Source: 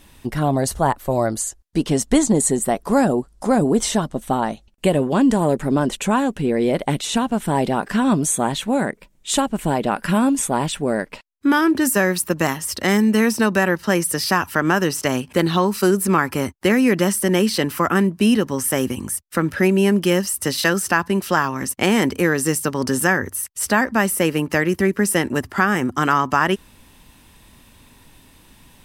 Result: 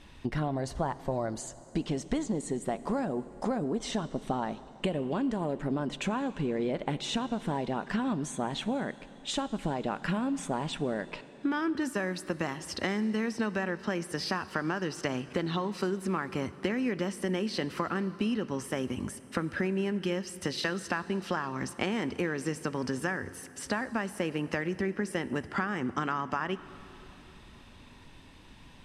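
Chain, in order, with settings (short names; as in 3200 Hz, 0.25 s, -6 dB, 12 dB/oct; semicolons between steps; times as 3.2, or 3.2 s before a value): compressor, threshold -25 dBFS, peak gain reduction 13.5 dB; LPF 4900 Hz 12 dB/oct; on a send: reverb RT60 3.7 s, pre-delay 13 ms, DRR 15 dB; on the sum: gain -3 dB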